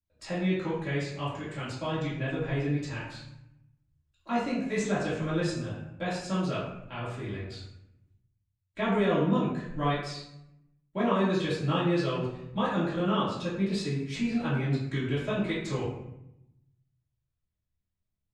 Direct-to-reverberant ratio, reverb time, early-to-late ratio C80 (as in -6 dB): -11.0 dB, 0.80 s, 5.0 dB